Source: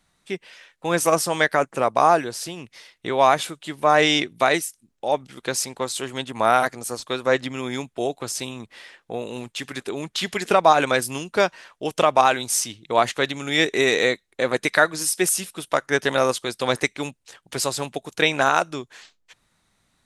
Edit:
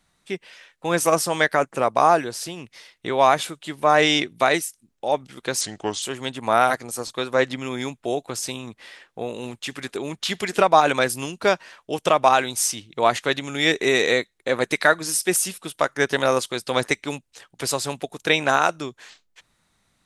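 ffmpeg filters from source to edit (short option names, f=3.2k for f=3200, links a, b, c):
-filter_complex "[0:a]asplit=3[a][b][c];[a]atrim=end=5.614[d];[b]atrim=start=5.61:end=5.95,asetpts=PTS-STARTPTS,asetrate=36162,aresample=44100,atrim=end_sample=18285,asetpts=PTS-STARTPTS[e];[c]atrim=start=5.946[f];[d][e]acrossfade=d=0.004:c1=hsin:c2=hsin[g];[g][f]acrossfade=d=0.004:c1=hsin:c2=hsin"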